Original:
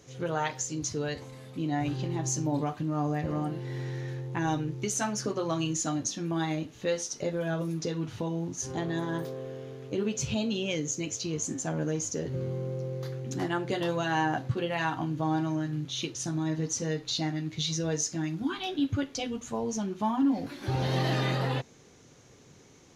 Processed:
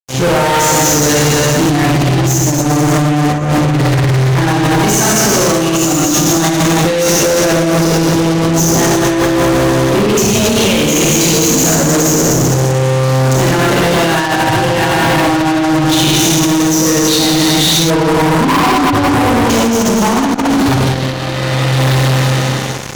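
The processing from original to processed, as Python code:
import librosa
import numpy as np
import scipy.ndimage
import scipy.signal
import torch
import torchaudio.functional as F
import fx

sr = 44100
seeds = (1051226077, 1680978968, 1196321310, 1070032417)

y = fx.rev_schroeder(x, sr, rt60_s=2.9, comb_ms=27, drr_db=-6.5)
y = fx.over_compress(y, sr, threshold_db=-26.0, ratio=-0.5)
y = fx.comb(y, sr, ms=6.7, depth=0.96, at=(2.65, 3.28))
y = fx.lowpass_res(y, sr, hz=1000.0, q=9.3, at=(17.9, 19.5))
y = fx.fuzz(y, sr, gain_db=37.0, gate_db=-40.0)
y = y * librosa.db_to_amplitude(4.0)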